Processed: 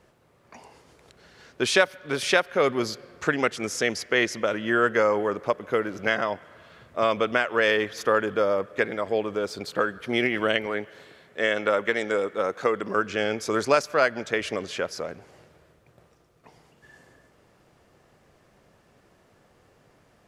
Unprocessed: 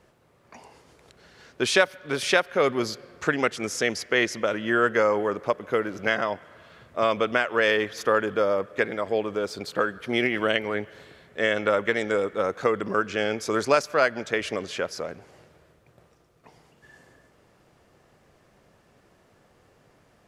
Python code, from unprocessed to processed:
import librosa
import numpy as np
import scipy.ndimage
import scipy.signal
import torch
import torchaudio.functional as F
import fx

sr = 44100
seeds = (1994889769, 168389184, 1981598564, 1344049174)

y = fx.highpass(x, sr, hz=200.0, slope=6, at=(10.66, 12.96))